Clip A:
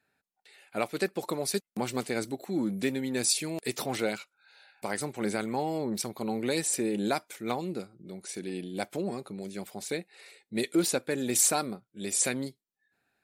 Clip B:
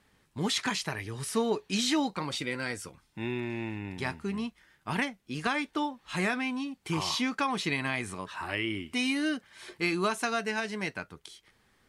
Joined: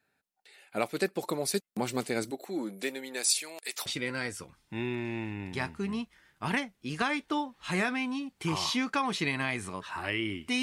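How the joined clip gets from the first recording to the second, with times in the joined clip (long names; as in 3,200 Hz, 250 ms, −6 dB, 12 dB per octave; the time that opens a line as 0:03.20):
clip A
0:02.30–0:03.86: high-pass filter 260 Hz → 1,100 Hz
0:03.86: continue with clip B from 0:02.31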